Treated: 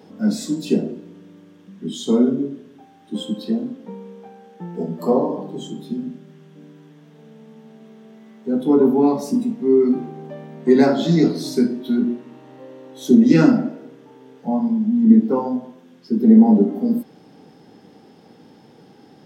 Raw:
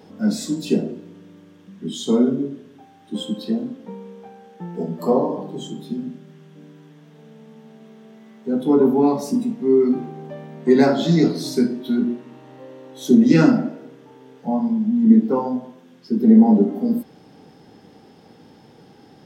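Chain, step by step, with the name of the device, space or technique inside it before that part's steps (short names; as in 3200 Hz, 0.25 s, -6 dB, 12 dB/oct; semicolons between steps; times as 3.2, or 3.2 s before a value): filter by subtraction (in parallel: LPF 210 Hz 12 dB/oct + phase invert); on the sum: gain -1 dB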